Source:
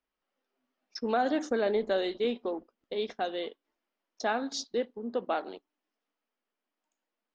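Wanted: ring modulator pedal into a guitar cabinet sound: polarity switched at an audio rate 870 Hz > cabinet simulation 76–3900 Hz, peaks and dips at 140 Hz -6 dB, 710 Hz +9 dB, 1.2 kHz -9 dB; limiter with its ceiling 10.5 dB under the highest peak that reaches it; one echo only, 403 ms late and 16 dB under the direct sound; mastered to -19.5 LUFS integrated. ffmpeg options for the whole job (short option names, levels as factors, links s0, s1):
-af "alimiter=level_in=1.33:limit=0.0631:level=0:latency=1,volume=0.75,aecho=1:1:403:0.158,aeval=exprs='val(0)*sgn(sin(2*PI*870*n/s))':c=same,highpass=76,equalizer=f=140:t=q:w=4:g=-6,equalizer=f=710:t=q:w=4:g=9,equalizer=f=1200:t=q:w=4:g=-9,lowpass=f=3900:w=0.5412,lowpass=f=3900:w=1.3066,volume=7.5"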